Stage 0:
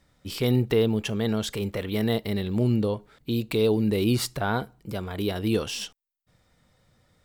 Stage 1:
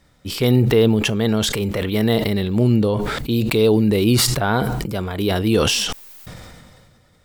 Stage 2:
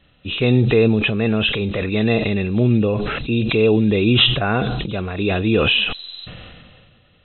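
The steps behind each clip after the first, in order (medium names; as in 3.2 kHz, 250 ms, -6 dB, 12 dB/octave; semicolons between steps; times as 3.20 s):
decay stretcher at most 28 dB/s; trim +6.5 dB
knee-point frequency compression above 2.4 kHz 4:1; band-stop 920 Hz, Q 7.9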